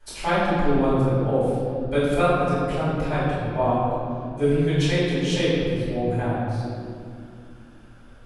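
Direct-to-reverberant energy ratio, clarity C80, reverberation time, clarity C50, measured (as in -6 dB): -13.0 dB, -1.0 dB, 2.5 s, -3.0 dB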